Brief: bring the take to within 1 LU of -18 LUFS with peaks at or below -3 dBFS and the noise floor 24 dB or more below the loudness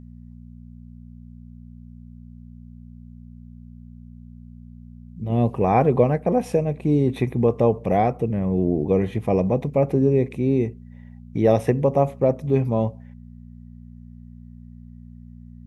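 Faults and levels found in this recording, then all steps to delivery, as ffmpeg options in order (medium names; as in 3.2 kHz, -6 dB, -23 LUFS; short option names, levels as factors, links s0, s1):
hum 60 Hz; highest harmonic 240 Hz; hum level -41 dBFS; loudness -21.5 LUFS; peak level -4.0 dBFS; loudness target -18.0 LUFS
-> -af "bandreject=f=60:t=h:w=4,bandreject=f=120:t=h:w=4,bandreject=f=180:t=h:w=4,bandreject=f=240:t=h:w=4"
-af "volume=1.5,alimiter=limit=0.708:level=0:latency=1"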